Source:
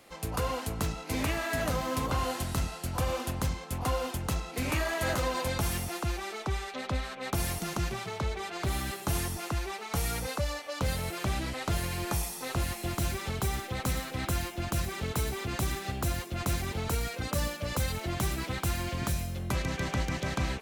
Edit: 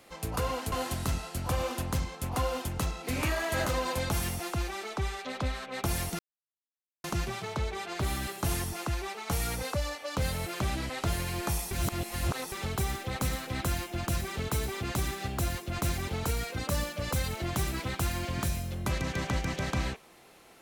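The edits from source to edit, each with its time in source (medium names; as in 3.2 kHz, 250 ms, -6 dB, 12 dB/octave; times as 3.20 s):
0.72–2.21 s: delete
7.68 s: insert silence 0.85 s
12.35–13.16 s: reverse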